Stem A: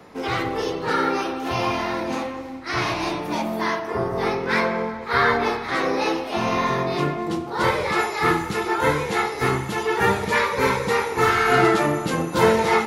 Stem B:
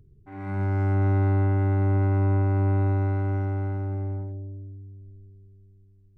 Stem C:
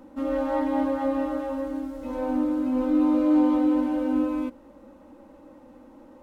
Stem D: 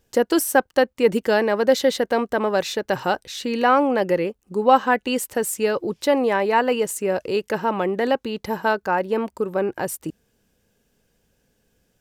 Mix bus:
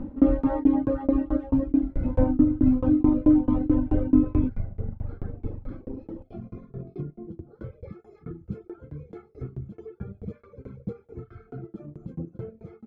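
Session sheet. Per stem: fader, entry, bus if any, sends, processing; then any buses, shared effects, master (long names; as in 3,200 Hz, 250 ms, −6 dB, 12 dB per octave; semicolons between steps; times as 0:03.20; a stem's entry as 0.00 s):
+1.0 dB, 0.00 s, bus B, no send, downward compressor 10 to 1, threshold −24 dBFS, peak gain reduction 13 dB; moving average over 47 samples; low-shelf EQ 140 Hz +6.5 dB
−9.0 dB, 1.50 s, bus A, no send, sub-octave generator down 2 octaves, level +3 dB; Chebyshev band-stop filter 230–490 Hz, order 2
+2.5 dB, 0.00 s, bus A, no send, bass and treble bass +13 dB, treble −14 dB
muted
bus A: 0.0 dB, high-shelf EQ 9,800 Hz −10.5 dB; downward compressor 2 to 1, threshold −18 dBFS, peak gain reduction 5 dB
bus B: 0.0 dB, noise gate −27 dBFS, range −9 dB; brickwall limiter −28.5 dBFS, peak gain reduction 10 dB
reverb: not used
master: reverb reduction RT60 1.7 s; low-shelf EQ 360 Hz +11 dB; shaped tremolo saw down 4.6 Hz, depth 100%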